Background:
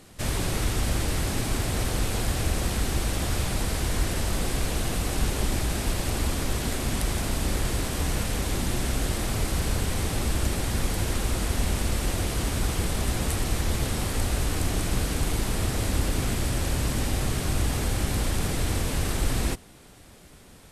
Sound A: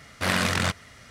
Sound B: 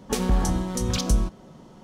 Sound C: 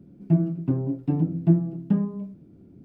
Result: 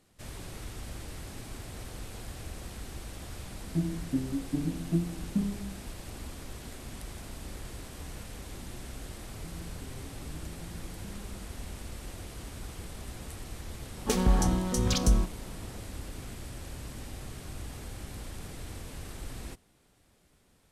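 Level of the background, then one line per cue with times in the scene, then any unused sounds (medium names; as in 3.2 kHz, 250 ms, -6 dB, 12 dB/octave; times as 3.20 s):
background -15.5 dB
3.45 s: add C -15.5 dB + peaking EQ 250 Hz +12.5 dB 1 oct
9.14 s: add C -17 dB + compression, threshold -27 dBFS
13.97 s: add B -2 dB
not used: A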